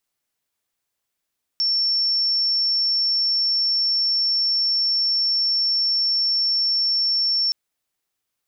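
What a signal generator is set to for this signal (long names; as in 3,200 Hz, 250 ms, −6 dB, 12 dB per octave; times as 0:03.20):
tone sine 5,430 Hz −17.5 dBFS 5.92 s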